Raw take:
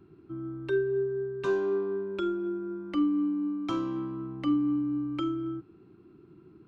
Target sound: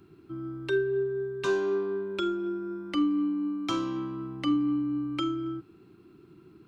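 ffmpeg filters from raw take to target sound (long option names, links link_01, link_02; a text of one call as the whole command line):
ffmpeg -i in.wav -af "highshelf=frequency=2200:gain=11.5" out.wav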